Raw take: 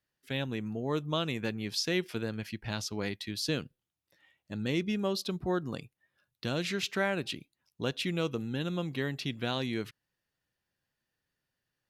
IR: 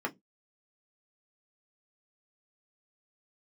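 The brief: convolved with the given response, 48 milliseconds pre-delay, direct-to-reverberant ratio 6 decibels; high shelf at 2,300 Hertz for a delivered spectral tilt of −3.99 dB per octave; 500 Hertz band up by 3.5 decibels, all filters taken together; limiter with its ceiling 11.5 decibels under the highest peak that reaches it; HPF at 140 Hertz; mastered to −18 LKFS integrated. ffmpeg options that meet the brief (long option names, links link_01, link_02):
-filter_complex "[0:a]highpass=140,equalizer=frequency=500:width_type=o:gain=4,highshelf=frequency=2300:gain=7.5,alimiter=limit=-24dB:level=0:latency=1,asplit=2[link_01][link_02];[1:a]atrim=start_sample=2205,adelay=48[link_03];[link_02][link_03]afir=irnorm=-1:irlink=0,volume=-11.5dB[link_04];[link_01][link_04]amix=inputs=2:normalize=0,volume=17dB"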